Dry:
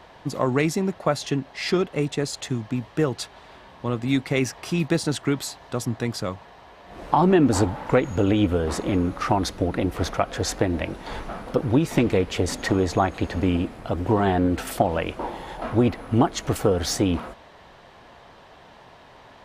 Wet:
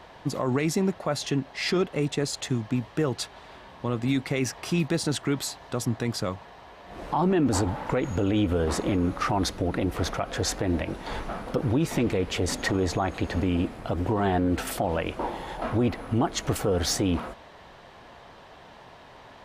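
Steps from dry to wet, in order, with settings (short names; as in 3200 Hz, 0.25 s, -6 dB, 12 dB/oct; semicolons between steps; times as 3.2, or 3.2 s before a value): limiter -15.5 dBFS, peak gain reduction 10 dB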